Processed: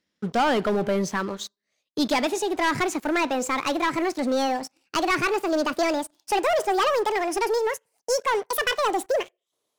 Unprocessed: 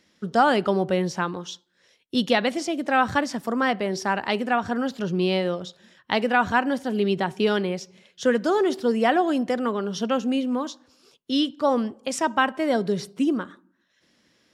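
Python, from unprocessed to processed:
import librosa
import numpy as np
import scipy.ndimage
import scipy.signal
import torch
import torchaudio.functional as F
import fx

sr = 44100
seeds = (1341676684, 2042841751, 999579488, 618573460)

y = fx.speed_glide(x, sr, from_pct=98, to_pct=199)
y = fx.leveller(y, sr, passes=3)
y = F.gain(torch.from_numpy(y), -9.0).numpy()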